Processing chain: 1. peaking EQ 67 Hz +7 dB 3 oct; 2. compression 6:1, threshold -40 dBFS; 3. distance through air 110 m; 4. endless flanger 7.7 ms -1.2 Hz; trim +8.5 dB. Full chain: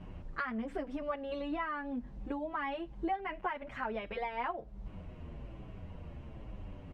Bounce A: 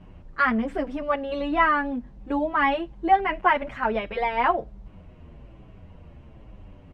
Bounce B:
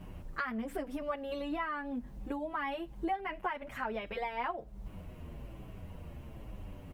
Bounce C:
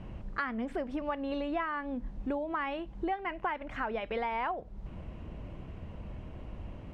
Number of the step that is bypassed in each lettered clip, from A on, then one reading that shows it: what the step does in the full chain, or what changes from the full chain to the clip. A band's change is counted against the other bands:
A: 2, mean gain reduction 7.0 dB; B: 3, 4 kHz band +2.0 dB; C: 4, loudness change +3.0 LU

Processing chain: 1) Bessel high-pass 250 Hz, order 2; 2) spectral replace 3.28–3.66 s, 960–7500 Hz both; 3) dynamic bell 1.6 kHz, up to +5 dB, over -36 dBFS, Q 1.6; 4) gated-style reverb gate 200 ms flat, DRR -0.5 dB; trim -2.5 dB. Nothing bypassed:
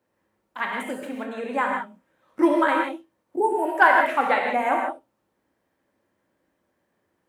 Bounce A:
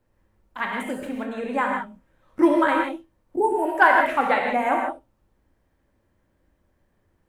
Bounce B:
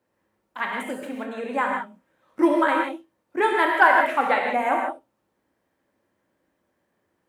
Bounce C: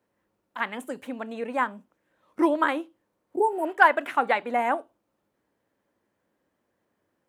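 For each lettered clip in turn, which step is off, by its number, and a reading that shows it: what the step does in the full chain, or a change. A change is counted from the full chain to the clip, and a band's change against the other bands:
1, momentary loudness spread change -1 LU; 2, 4 kHz band +1.5 dB; 4, crest factor change +3.0 dB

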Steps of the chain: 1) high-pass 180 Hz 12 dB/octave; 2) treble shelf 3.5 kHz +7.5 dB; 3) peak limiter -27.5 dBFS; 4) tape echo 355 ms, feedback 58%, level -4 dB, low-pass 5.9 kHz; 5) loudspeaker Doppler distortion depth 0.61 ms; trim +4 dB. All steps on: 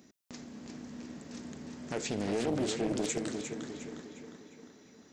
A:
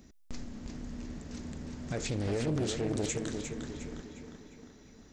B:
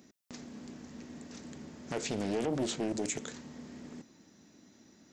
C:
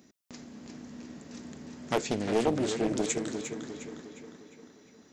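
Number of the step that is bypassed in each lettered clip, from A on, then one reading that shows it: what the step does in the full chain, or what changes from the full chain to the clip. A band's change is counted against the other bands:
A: 1, 125 Hz band +7.5 dB; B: 4, momentary loudness spread change -3 LU; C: 3, crest factor change +3.5 dB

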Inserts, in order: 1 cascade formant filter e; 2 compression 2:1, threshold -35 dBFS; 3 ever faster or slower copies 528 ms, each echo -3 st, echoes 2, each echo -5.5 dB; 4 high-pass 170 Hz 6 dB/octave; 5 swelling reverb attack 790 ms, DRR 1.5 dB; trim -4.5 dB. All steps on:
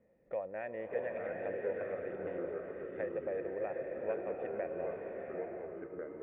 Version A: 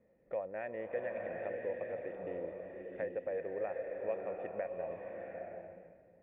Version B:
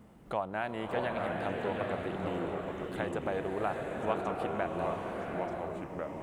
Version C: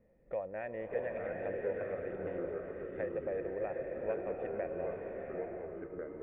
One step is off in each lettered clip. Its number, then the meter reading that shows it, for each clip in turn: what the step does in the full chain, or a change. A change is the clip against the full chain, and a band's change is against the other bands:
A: 3, loudness change -1.0 LU; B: 1, 500 Hz band -8.5 dB; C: 4, 125 Hz band +4.0 dB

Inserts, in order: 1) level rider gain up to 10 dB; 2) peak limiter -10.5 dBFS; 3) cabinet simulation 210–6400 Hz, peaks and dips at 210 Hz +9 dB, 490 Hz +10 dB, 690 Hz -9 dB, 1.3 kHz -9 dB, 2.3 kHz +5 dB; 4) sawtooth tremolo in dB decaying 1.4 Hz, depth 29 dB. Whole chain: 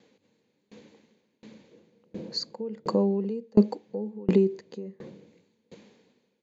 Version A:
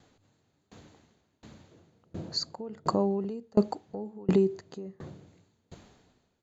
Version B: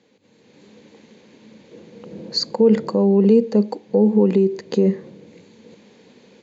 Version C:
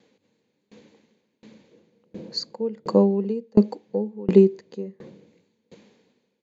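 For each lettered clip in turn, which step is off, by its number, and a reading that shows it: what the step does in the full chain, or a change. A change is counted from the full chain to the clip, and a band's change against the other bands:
3, 1 kHz band +6.0 dB; 4, momentary loudness spread change -9 LU; 2, mean gain reduction 1.5 dB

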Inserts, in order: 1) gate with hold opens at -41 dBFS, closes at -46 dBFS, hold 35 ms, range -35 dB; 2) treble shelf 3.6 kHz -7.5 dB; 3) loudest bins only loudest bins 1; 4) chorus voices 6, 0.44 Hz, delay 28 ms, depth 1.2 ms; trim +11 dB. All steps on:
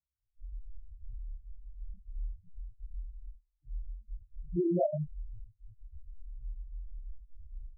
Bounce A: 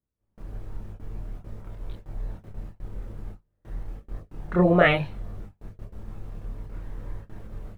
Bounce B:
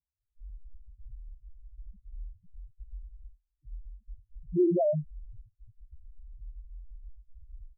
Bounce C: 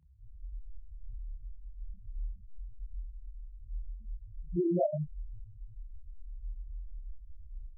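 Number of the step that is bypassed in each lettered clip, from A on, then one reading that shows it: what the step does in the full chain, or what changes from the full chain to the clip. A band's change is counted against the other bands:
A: 3, crest factor change +5.5 dB; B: 4, loudness change +11.0 LU; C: 1, momentary loudness spread change -2 LU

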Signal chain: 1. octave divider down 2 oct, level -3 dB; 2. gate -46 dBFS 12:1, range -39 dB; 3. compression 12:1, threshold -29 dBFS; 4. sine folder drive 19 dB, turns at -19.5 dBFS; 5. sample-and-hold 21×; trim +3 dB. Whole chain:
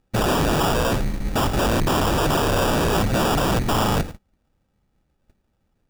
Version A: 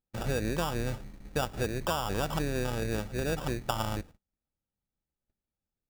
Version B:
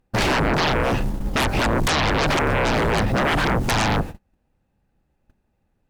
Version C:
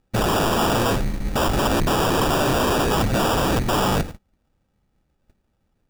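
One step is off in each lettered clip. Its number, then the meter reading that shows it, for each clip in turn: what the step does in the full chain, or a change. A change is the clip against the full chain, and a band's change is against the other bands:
4, crest factor change +11.5 dB; 5, 2 kHz band +5.5 dB; 3, mean gain reduction 3.0 dB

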